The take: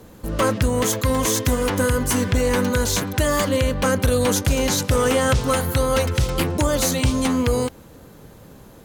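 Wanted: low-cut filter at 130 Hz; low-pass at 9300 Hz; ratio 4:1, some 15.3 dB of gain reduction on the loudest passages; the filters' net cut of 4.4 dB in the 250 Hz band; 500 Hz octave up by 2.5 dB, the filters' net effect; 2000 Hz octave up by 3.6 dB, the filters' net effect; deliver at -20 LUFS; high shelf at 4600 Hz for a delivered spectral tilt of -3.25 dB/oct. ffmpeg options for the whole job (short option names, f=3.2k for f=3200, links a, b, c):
-af "highpass=130,lowpass=9.3k,equalizer=f=250:t=o:g=-5.5,equalizer=f=500:t=o:g=3.5,equalizer=f=2k:t=o:g=4,highshelf=f=4.6k:g=3.5,acompressor=threshold=-33dB:ratio=4,volume=13dB"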